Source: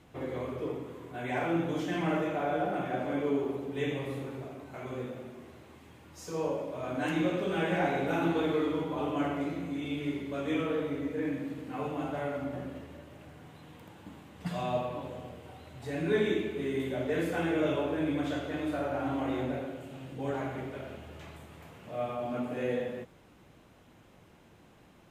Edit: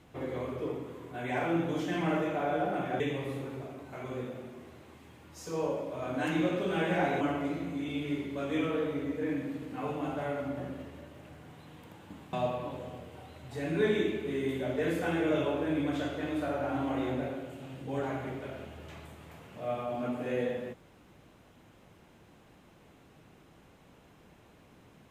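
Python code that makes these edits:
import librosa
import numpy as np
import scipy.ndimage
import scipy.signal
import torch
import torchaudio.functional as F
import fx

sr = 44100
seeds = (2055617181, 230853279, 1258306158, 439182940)

y = fx.edit(x, sr, fx.cut(start_s=3.0, length_s=0.81),
    fx.cut(start_s=8.02, length_s=1.15),
    fx.cut(start_s=14.29, length_s=0.35), tone=tone)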